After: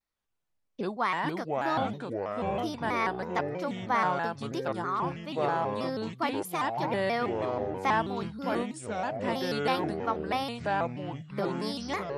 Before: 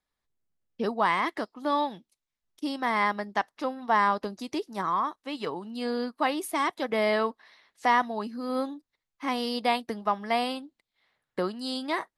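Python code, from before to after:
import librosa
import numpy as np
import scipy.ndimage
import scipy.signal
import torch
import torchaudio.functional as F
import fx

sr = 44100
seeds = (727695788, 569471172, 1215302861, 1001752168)

y = fx.echo_pitch(x, sr, ms=171, semitones=-5, count=3, db_per_echo=-3.0)
y = fx.vibrato_shape(y, sr, shape='square', rate_hz=3.1, depth_cents=160.0)
y = y * 10.0 ** (-4.0 / 20.0)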